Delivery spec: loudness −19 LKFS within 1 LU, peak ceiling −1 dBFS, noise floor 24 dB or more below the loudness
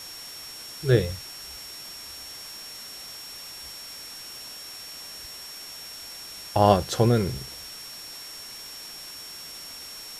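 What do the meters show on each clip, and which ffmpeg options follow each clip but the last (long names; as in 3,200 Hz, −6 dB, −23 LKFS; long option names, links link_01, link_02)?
interfering tone 5,500 Hz; level of the tone −40 dBFS; background noise floor −41 dBFS; target noise floor −54 dBFS; integrated loudness −30.0 LKFS; sample peak −4.5 dBFS; target loudness −19.0 LKFS
→ -af "bandreject=frequency=5500:width=30"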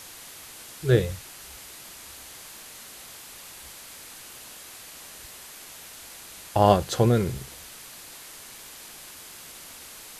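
interfering tone none found; background noise floor −45 dBFS; target noise floor −48 dBFS
→ -af "afftdn=noise_reduction=6:noise_floor=-45"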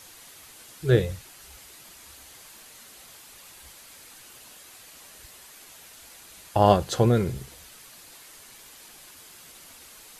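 background noise floor −49 dBFS; integrated loudness −23.5 LKFS; sample peak −4.5 dBFS; target loudness −19.0 LKFS
→ -af "volume=4.5dB,alimiter=limit=-1dB:level=0:latency=1"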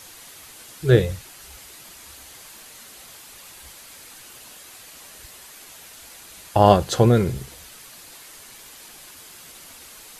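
integrated loudness −19.0 LKFS; sample peak −1.0 dBFS; background noise floor −45 dBFS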